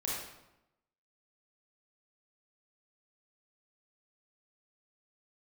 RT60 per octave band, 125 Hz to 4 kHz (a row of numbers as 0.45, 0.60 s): 1.0, 1.0, 0.90, 0.90, 0.80, 0.65 s